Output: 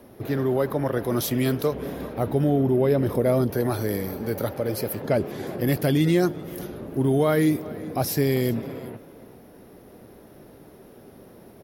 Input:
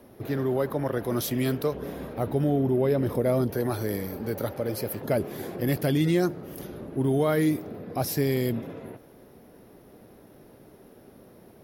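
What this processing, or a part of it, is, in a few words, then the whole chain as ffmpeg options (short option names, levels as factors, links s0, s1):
ducked delay: -filter_complex "[0:a]asettb=1/sr,asplit=3[s0][s1][s2];[s0]atrim=end=5.034[s3];[s1]atrim=start=5.03:end=5.47,asetpts=PTS-STARTPTS,afade=t=in:d=0.004:c=qsin,afade=t=out:st=0.436:d=0.004:c=qsin,lowpass=7500[s4];[s2]atrim=start=5.466[s5];[s3][s4]acrossfade=d=0.004:c1=hsin:c2=qsin[s6];[s6][s5]acrossfade=d=0.004:c1=qsin:c2=hsin,asplit=3[s7][s8][s9];[s8]adelay=385,volume=0.447[s10];[s9]apad=whole_len=530083[s11];[s10][s11]sidechaincompress=threshold=0.0158:ratio=5:attack=16:release=1260[s12];[s7][s12]amix=inputs=2:normalize=0,volume=1.41"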